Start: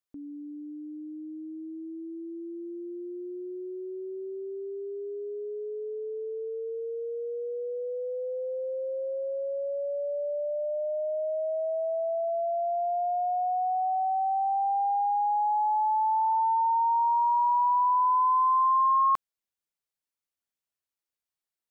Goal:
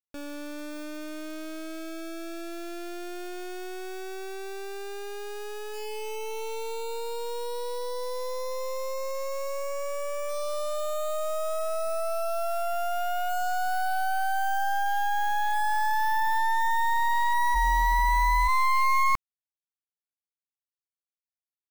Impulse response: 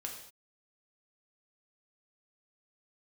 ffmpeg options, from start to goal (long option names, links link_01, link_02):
-filter_complex "[0:a]acrusher=bits=4:dc=4:mix=0:aa=0.000001,asplit=3[link_01][link_02][link_03];[link_01]afade=type=out:start_time=17.54:duration=0.02[link_04];[link_02]afreqshift=-41,afade=type=in:start_time=17.54:duration=0.02,afade=type=out:start_time=18.47:duration=0.02[link_05];[link_03]afade=type=in:start_time=18.47:duration=0.02[link_06];[link_04][link_05][link_06]amix=inputs=3:normalize=0,volume=4dB"